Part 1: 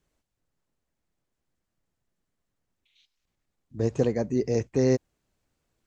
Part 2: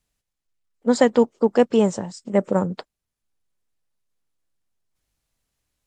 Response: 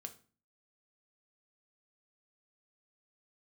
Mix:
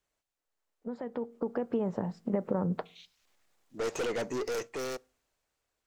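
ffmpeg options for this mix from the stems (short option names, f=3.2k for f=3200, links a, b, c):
-filter_complex "[0:a]highpass=530,aeval=exprs='(tanh(100*val(0)+0.25)-tanh(0.25))/100':c=same,volume=-4.5dB,asplit=2[a][b];[b]volume=-10dB[c];[1:a]alimiter=limit=-14dB:level=0:latency=1:release=38,lowpass=1.6k,acompressor=threshold=-27dB:ratio=6,volume=-15dB,asplit=2[d][e];[e]volume=-4.5dB[f];[2:a]atrim=start_sample=2205[g];[c][f]amix=inputs=2:normalize=0[h];[h][g]afir=irnorm=-1:irlink=0[i];[a][d][i]amix=inputs=3:normalize=0,dynaudnorm=f=260:g=11:m=14dB"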